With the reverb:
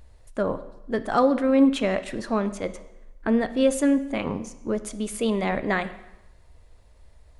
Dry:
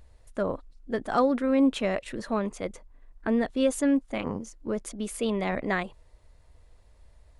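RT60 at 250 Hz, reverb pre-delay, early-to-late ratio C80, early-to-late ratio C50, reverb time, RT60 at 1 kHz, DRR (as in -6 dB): 0.90 s, 5 ms, 16.0 dB, 13.5 dB, 0.95 s, 0.95 s, 11.5 dB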